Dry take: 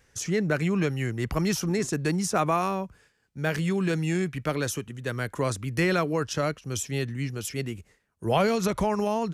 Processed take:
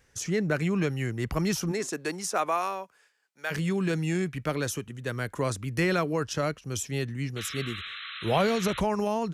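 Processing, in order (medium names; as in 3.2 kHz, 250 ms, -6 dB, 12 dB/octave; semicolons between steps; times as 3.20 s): 1.71–3.50 s: high-pass 290 Hz -> 840 Hz 12 dB/octave; 7.36–8.81 s: painted sound noise 1.1–4.1 kHz -38 dBFS; trim -1.5 dB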